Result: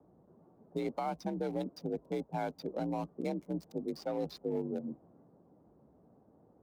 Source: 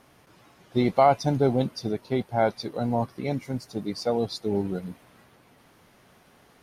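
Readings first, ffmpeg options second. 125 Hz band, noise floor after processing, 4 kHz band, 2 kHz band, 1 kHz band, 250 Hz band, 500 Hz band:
-14.0 dB, -65 dBFS, -15.0 dB, -13.0 dB, -14.0 dB, -9.5 dB, -11.5 dB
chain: -filter_complex "[0:a]afreqshift=49,acrossover=split=790[s0][s1];[s0]lowshelf=f=62:g=7[s2];[s1]aeval=exprs='sgn(val(0))*max(abs(val(0))-0.00891,0)':c=same[s3];[s2][s3]amix=inputs=2:normalize=0,acrossover=split=380|1500|3000[s4][s5][s6][s7];[s4]acompressor=threshold=0.0251:ratio=4[s8];[s5]acompressor=threshold=0.0398:ratio=4[s9];[s6]acompressor=threshold=0.00891:ratio=4[s10];[s7]acompressor=threshold=0.00316:ratio=4[s11];[s8][s9][s10][s11]amix=inputs=4:normalize=0,alimiter=limit=0.0841:level=0:latency=1:release=268,volume=0.668"

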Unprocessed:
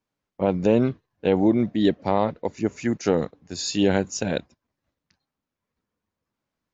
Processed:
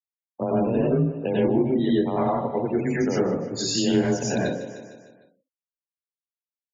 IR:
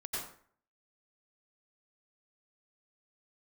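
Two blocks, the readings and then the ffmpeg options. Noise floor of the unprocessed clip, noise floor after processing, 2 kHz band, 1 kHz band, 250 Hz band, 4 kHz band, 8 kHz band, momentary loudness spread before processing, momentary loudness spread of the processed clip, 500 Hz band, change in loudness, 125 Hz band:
under -85 dBFS, under -85 dBFS, -0.5 dB, 0.0 dB, 0.0 dB, +1.5 dB, no reading, 8 LU, 6 LU, 0.0 dB, 0.0 dB, +1.5 dB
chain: -filter_complex "[0:a]afreqshift=23,alimiter=limit=0.224:level=0:latency=1:release=327[s0];[1:a]atrim=start_sample=2205[s1];[s0][s1]afir=irnorm=-1:irlink=0,afftfilt=real='re*gte(hypot(re,im),0.0178)':imag='im*gte(hypot(re,im),0.0178)':win_size=1024:overlap=0.75,aecho=1:1:152|304|456|608|760:0.141|0.0763|0.0412|0.0222|0.012,acrossover=split=140[s2][s3];[s3]acompressor=threshold=0.0158:ratio=2[s4];[s2][s4]amix=inputs=2:normalize=0,volume=2.66"

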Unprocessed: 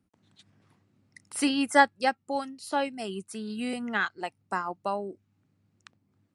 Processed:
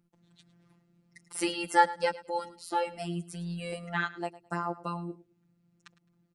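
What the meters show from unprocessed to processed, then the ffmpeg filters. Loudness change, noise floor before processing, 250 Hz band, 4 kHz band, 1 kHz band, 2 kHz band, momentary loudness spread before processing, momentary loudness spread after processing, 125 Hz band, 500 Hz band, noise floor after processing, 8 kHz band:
-3.0 dB, -74 dBFS, -6.5 dB, -4.0 dB, -1.5 dB, -5.0 dB, 15 LU, 14 LU, +9.0 dB, -2.5 dB, -72 dBFS, -3.0 dB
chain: -af "lowshelf=f=300:g=8,afftfilt=real='hypot(re,im)*cos(PI*b)':imag='0':win_size=1024:overlap=0.75,aecho=1:1:106|212:0.133|0.0293"

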